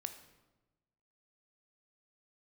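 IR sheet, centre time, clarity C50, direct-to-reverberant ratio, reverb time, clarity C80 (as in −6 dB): 12 ms, 10.0 dB, 8.0 dB, 1.1 s, 12.5 dB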